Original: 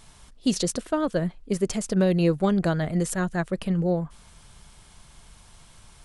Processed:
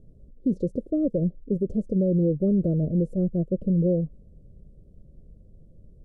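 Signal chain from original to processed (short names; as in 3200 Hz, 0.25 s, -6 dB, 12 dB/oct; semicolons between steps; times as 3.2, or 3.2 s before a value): elliptic low-pass 550 Hz, stop band 40 dB; limiter -19 dBFS, peak gain reduction 6 dB; gain +3.5 dB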